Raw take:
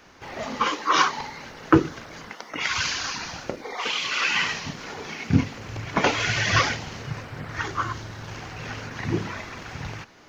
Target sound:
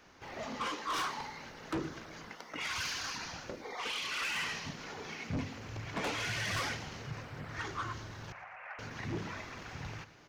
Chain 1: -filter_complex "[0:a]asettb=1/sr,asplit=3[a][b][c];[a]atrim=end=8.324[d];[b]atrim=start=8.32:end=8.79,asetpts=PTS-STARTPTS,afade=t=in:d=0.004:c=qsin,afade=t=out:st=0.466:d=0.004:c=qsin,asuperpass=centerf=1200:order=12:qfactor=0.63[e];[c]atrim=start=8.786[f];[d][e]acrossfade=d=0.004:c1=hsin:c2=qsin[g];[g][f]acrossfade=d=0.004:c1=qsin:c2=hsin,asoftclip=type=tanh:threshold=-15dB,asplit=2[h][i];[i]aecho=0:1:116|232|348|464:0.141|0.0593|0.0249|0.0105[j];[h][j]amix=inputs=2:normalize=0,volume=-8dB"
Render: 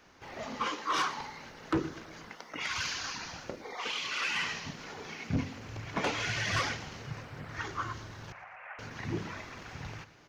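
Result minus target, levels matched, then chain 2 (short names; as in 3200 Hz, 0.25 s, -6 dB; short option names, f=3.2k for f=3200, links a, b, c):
soft clip: distortion -6 dB
-filter_complex "[0:a]asettb=1/sr,asplit=3[a][b][c];[a]atrim=end=8.324[d];[b]atrim=start=8.32:end=8.79,asetpts=PTS-STARTPTS,afade=t=in:d=0.004:c=qsin,afade=t=out:st=0.466:d=0.004:c=qsin,asuperpass=centerf=1200:order=12:qfactor=0.63[e];[c]atrim=start=8.786[f];[d][e]acrossfade=d=0.004:c1=hsin:c2=qsin[g];[g][f]acrossfade=d=0.004:c1=qsin:c2=hsin,asoftclip=type=tanh:threshold=-23.5dB,asplit=2[h][i];[i]aecho=0:1:116|232|348|464:0.141|0.0593|0.0249|0.0105[j];[h][j]amix=inputs=2:normalize=0,volume=-8dB"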